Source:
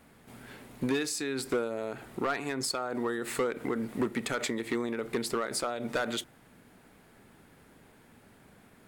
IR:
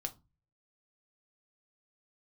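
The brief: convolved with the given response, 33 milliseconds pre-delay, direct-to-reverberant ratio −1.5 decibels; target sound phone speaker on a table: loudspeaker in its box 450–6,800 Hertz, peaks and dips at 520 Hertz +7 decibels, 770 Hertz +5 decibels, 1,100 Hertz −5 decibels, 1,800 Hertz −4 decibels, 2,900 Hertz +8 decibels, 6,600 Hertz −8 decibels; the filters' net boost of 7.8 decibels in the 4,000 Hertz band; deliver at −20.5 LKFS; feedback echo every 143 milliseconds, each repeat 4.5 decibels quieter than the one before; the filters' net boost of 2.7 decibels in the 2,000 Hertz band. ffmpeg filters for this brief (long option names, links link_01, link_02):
-filter_complex "[0:a]equalizer=frequency=2000:width_type=o:gain=3,equalizer=frequency=4000:width_type=o:gain=7,aecho=1:1:143|286|429|572|715|858|1001|1144|1287:0.596|0.357|0.214|0.129|0.0772|0.0463|0.0278|0.0167|0.01,asplit=2[link_01][link_02];[1:a]atrim=start_sample=2205,adelay=33[link_03];[link_02][link_03]afir=irnorm=-1:irlink=0,volume=2.5dB[link_04];[link_01][link_04]amix=inputs=2:normalize=0,highpass=frequency=450:width=0.5412,highpass=frequency=450:width=1.3066,equalizer=frequency=520:width_type=q:width=4:gain=7,equalizer=frequency=770:width_type=q:width=4:gain=5,equalizer=frequency=1100:width_type=q:width=4:gain=-5,equalizer=frequency=1800:width_type=q:width=4:gain=-4,equalizer=frequency=2900:width_type=q:width=4:gain=8,equalizer=frequency=6600:width_type=q:width=4:gain=-8,lowpass=frequency=6800:width=0.5412,lowpass=frequency=6800:width=1.3066,volume=4.5dB"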